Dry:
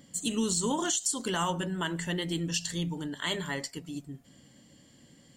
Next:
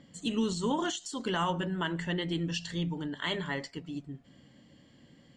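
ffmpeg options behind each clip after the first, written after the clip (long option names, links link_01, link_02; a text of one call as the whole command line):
ffmpeg -i in.wav -af "lowpass=3700" out.wav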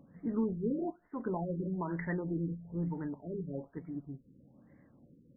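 ffmpeg -i in.wav -af "afftfilt=real='re*lt(b*sr/1024,510*pow(2300/510,0.5+0.5*sin(2*PI*1.1*pts/sr)))':imag='im*lt(b*sr/1024,510*pow(2300/510,0.5+0.5*sin(2*PI*1.1*pts/sr)))':win_size=1024:overlap=0.75,volume=-2dB" out.wav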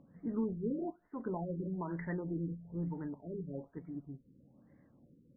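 ffmpeg -i in.wav -af "aemphasis=mode=reproduction:type=75fm,volume=-3.5dB" out.wav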